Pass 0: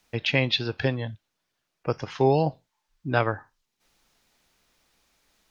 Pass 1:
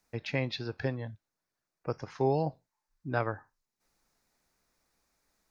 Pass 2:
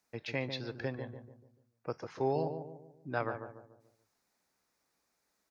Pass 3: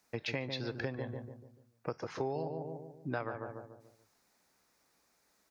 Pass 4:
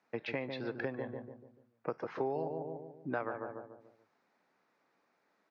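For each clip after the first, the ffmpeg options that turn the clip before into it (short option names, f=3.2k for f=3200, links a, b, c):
-af "equalizer=f=3.1k:w=2.3:g=-11.5,volume=-7dB"
-filter_complex "[0:a]highpass=f=180:p=1,asplit=2[a][b];[b]adelay=145,lowpass=f=1k:p=1,volume=-6.5dB,asplit=2[c][d];[d]adelay=145,lowpass=f=1k:p=1,volume=0.45,asplit=2[e][f];[f]adelay=145,lowpass=f=1k:p=1,volume=0.45,asplit=2[g][h];[h]adelay=145,lowpass=f=1k:p=1,volume=0.45,asplit=2[i][j];[j]adelay=145,lowpass=f=1k:p=1,volume=0.45[k];[a][c][e][g][i][k]amix=inputs=6:normalize=0,volume=-3dB"
-af "acompressor=threshold=-40dB:ratio=5,volume=6.5dB"
-af "highpass=190,lowpass=2.3k,volume=1.5dB"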